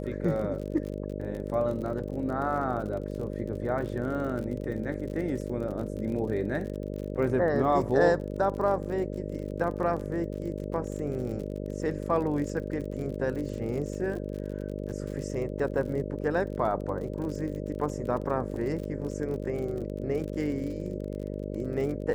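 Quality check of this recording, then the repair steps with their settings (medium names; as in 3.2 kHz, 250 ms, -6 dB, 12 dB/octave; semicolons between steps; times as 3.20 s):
buzz 50 Hz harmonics 12 -35 dBFS
crackle 43 per s -36 dBFS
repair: de-click; de-hum 50 Hz, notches 12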